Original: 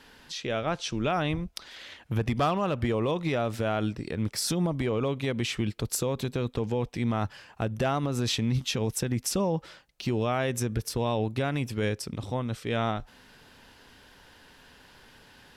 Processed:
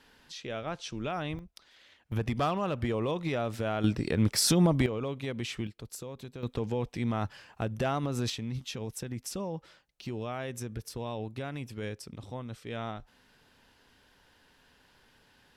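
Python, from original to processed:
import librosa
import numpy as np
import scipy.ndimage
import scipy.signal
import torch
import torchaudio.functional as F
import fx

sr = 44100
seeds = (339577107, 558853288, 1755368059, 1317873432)

y = fx.gain(x, sr, db=fx.steps((0.0, -7.0), (1.39, -14.0), (2.12, -3.5), (3.84, 4.0), (4.86, -6.0), (5.67, -13.0), (6.43, -3.0), (8.3, -9.0)))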